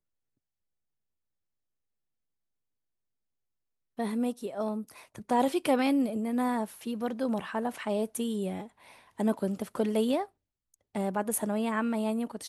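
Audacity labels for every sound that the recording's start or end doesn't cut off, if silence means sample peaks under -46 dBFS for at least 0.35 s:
3.980000	10.260000	sound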